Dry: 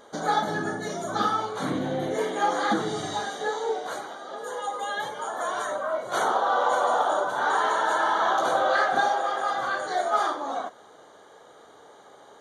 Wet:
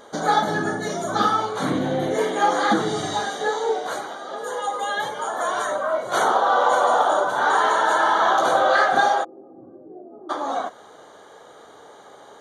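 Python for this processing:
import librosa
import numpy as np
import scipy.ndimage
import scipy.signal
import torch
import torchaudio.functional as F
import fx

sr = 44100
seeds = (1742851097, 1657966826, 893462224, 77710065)

y = fx.ladder_lowpass(x, sr, hz=360.0, resonance_pct=55, at=(9.23, 10.29), fade=0.02)
y = y * librosa.db_to_amplitude(5.0)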